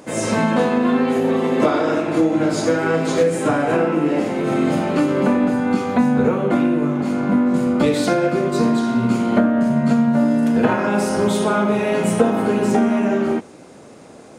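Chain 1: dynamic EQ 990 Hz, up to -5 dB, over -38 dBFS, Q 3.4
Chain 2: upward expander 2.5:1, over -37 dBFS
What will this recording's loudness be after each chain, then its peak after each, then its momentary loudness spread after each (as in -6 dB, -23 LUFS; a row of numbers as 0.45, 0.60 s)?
-18.5, -26.5 LUFS; -2.0, -2.0 dBFS; 3, 8 LU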